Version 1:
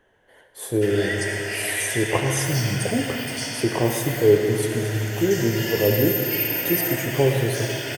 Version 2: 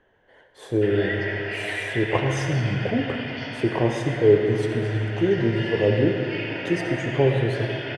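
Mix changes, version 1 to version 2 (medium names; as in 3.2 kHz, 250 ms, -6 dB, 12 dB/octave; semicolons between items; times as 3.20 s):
background: add low-pass 3.8 kHz 24 dB/octave; master: add distance through air 140 m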